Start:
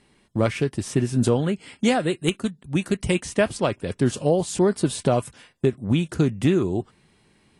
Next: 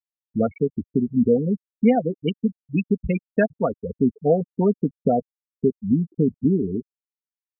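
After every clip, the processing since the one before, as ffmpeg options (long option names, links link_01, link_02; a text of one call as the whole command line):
ffmpeg -i in.wav -af "afftfilt=real='re*gte(hypot(re,im),0.224)':imag='im*gte(hypot(re,im),0.224)':win_size=1024:overlap=0.75,aecho=1:1:4.3:0.67" out.wav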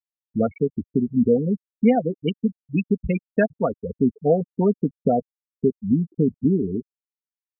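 ffmpeg -i in.wav -af anull out.wav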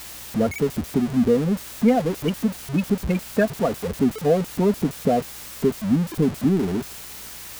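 ffmpeg -i in.wav -af "aeval=exprs='val(0)+0.5*0.0596*sgn(val(0))':channel_layout=same,aeval=exprs='val(0)+0.00316*(sin(2*PI*60*n/s)+sin(2*PI*2*60*n/s)/2+sin(2*PI*3*60*n/s)/3+sin(2*PI*4*60*n/s)/4+sin(2*PI*5*60*n/s)/5)':channel_layout=same,volume=-1.5dB" out.wav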